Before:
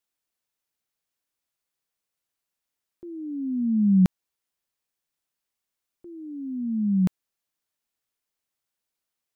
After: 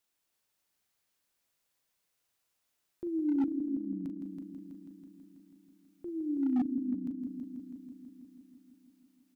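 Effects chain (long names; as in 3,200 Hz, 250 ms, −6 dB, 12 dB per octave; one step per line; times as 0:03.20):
gate with flip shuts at −26 dBFS, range −28 dB
double-tracking delay 40 ms −10.5 dB
echo machine with several playback heads 163 ms, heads first and second, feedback 66%, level −9 dB
gain into a clipping stage and back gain 27 dB
level +3 dB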